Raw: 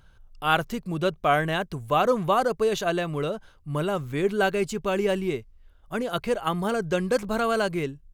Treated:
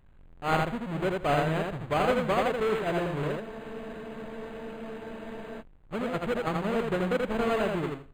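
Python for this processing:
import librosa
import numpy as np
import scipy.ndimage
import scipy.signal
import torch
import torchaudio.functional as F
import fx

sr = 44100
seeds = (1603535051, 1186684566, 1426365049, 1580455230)

p1 = fx.halfwave_hold(x, sr)
p2 = p1 + fx.echo_feedback(p1, sr, ms=82, feedback_pct=18, wet_db=-3.0, dry=0)
p3 = fx.spec_freeze(p2, sr, seeds[0], at_s=3.44, hold_s=2.16)
p4 = np.interp(np.arange(len(p3)), np.arange(len(p3))[::8], p3[::8])
y = p4 * 10.0 ** (-8.5 / 20.0)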